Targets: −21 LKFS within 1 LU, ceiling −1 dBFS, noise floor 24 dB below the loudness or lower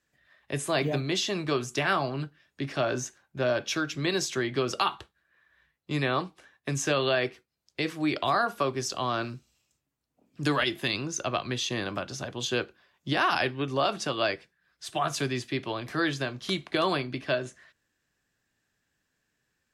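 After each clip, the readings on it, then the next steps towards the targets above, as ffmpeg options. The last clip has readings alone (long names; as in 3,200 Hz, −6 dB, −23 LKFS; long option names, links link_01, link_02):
integrated loudness −29.0 LKFS; sample peak −13.0 dBFS; target loudness −21.0 LKFS
→ -af "volume=8dB"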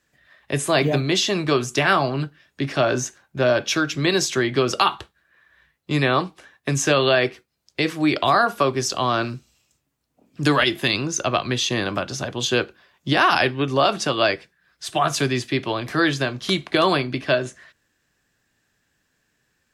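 integrated loudness −21.0 LKFS; sample peak −5.0 dBFS; background noise floor −72 dBFS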